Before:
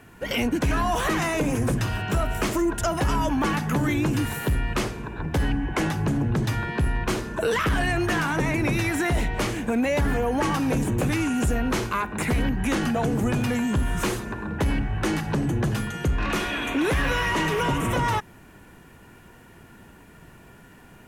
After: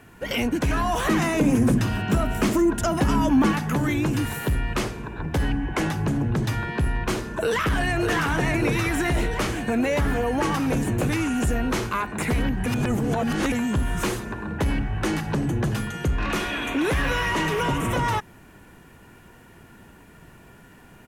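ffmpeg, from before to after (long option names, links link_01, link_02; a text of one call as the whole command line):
ffmpeg -i in.wav -filter_complex "[0:a]asettb=1/sr,asplit=3[link_01][link_02][link_03];[link_01]atrim=end=1.074[link_04];[link_02]atrim=start=1.07:end=3.52,asetpts=PTS-STARTPTS,afade=type=in:duration=0.004:curve=qsin,afade=type=out:start_time=2.446:duration=0.004:curve=qsin,equalizer=frequency=230:width=1.5:gain=9[link_05];[link_03]atrim=start=3.516[link_06];[link_04][link_05]acrossfade=duration=0.004:curve1=hsin:curve2=qsin[link_07];[link_07][link_06]acrossfade=duration=0.004:curve1=qsin:curve2=hsin,asplit=2[link_08][link_09];[link_09]afade=type=in:start_time=7.39:duration=0.01,afade=type=out:start_time=8.07:duration=0.01,aecho=0:1:600|1200|1800|2400|3000|3600|4200|4800|5400|6000|6600|7200:0.530884|0.398163|0.298622|0.223967|0.167975|0.125981|0.094486|0.0708645|0.0531484|0.0398613|0.029896|0.022422[link_10];[link_08][link_10]amix=inputs=2:normalize=0,asplit=3[link_11][link_12][link_13];[link_11]atrim=end=12.662[link_14];[link_12]atrim=start=12.658:end=13.522,asetpts=PTS-STARTPTS,areverse[link_15];[link_13]atrim=start=13.518[link_16];[link_14][link_15]acrossfade=duration=0.004:curve1=hsin:curve2=hsin[link_17];[link_17][link_16]acrossfade=duration=0.004:curve1=hsin:curve2=hsin" out.wav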